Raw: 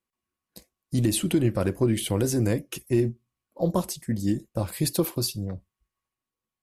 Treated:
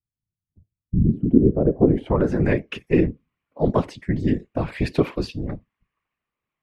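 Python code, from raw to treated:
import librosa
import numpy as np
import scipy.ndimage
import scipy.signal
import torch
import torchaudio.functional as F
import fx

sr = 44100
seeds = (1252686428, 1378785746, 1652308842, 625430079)

y = fx.whisperise(x, sr, seeds[0])
y = fx.filter_sweep_lowpass(y, sr, from_hz=110.0, to_hz=2300.0, start_s=0.78, end_s=2.55, q=2.0)
y = F.gain(torch.from_numpy(y), 4.0).numpy()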